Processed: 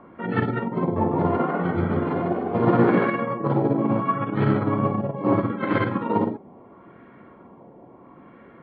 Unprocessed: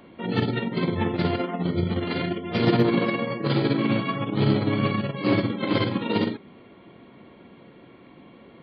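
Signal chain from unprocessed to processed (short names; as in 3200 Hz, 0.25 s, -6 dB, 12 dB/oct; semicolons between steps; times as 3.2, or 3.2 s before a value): LFO low-pass sine 0.74 Hz 800–1600 Hz; 0.81–3.08 frequency-shifting echo 0.15 s, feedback 53%, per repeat +63 Hz, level -5 dB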